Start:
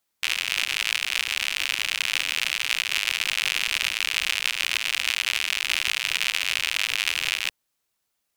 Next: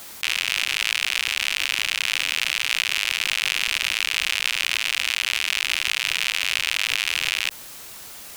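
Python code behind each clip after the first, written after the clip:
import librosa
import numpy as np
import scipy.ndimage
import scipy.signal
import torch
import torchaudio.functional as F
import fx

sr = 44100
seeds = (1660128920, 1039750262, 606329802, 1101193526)

y = fx.env_flatten(x, sr, amount_pct=70)
y = y * librosa.db_to_amplitude(-1.0)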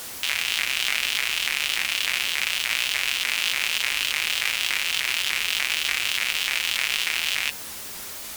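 y = fx.quant_dither(x, sr, seeds[0], bits=6, dither='triangular')
y = fx.notch_comb(y, sr, f0_hz=160.0)
y = fx.vibrato_shape(y, sr, shape='saw_up', rate_hz=3.4, depth_cents=250.0)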